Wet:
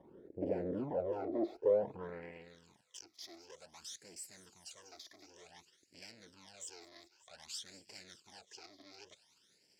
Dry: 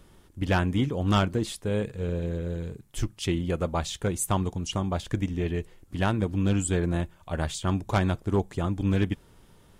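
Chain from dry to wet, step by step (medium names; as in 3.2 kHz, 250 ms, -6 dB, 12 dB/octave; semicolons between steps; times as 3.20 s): valve stage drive 40 dB, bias 0.8; 3.14–5.55 s: dynamic bell 3.6 kHz, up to -7 dB, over -59 dBFS, Q 0.95; band-pass sweep 510 Hz -> 5.3 kHz, 1.85–2.60 s; peaking EQ 360 Hz +13 dB 2.9 oct; band-stop 1.2 kHz, Q 6.7; feedback echo behind a high-pass 195 ms, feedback 73%, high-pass 2.8 kHz, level -16 dB; phase shifter stages 12, 0.54 Hz, lowest notch 150–1200 Hz; trim +7.5 dB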